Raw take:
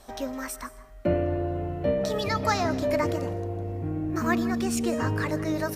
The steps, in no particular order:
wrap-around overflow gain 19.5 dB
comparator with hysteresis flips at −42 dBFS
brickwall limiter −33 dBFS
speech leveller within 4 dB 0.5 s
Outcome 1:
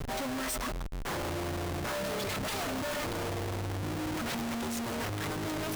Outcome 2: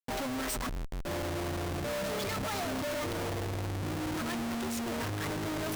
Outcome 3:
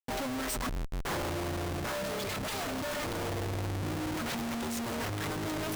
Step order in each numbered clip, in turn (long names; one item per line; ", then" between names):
wrap-around overflow, then speech leveller, then comparator with hysteresis, then brickwall limiter
comparator with hysteresis, then speech leveller, then wrap-around overflow, then brickwall limiter
wrap-around overflow, then comparator with hysteresis, then brickwall limiter, then speech leveller